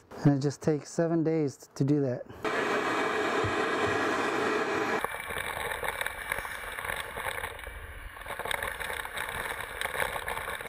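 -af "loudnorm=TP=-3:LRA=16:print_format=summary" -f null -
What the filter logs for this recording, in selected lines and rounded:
Input Integrated:    -31.1 LUFS
Input True Peak:     -13.2 dBTP
Input LRA:             5.9 LU
Input Threshold:     -41.4 LUFS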